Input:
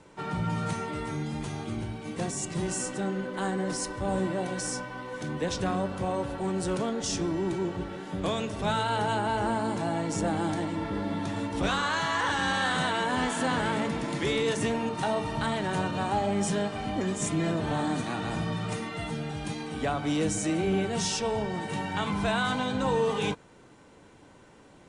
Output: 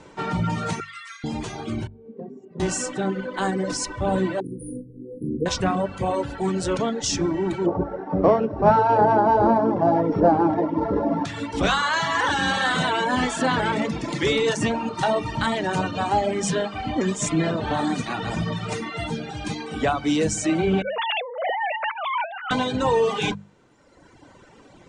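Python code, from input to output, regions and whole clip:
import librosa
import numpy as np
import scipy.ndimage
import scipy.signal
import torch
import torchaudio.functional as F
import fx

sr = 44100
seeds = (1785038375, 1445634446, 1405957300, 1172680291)

y = fx.chain(x, sr, fx.steep_highpass(hz=1100.0, slope=96),
    fx.high_shelf(hz=5000.0, db=-3.0), at=(0.8, 1.24))
y = fx.chain(y, sr, fx.double_bandpass(hz=320.0, octaves=0.71),
    fx.air_absorb(metres=72.0), at=(1.87, 2.6))
y = fx.chain(y, sr, fx.brickwall_bandstop(low_hz=500.0, high_hz=9200.0),
    fx.doubler(ms=40.0, db=-8), at=(4.4, 5.46))
y = fx.chain(y, sr, fx.sample_sort(block=8),
    fx.lowpass(hz=1200.0, slope=12),
    fx.peak_eq(hz=640.0, db=8.5, octaves=2.7), at=(7.66, 11.25))
y = fx.chain(y, sr, fx.sine_speech(),
    fx.over_compress(threshold_db=-35.0, ratio=-1.0), at=(20.82, 22.51))
y = fx.dereverb_blind(y, sr, rt60_s=1.5)
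y = scipy.signal.sosfilt(scipy.signal.butter(4, 8000.0, 'lowpass', fs=sr, output='sos'), y)
y = fx.hum_notches(y, sr, base_hz=50, count=4)
y = F.gain(torch.from_numpy(y), 8.0).numpy()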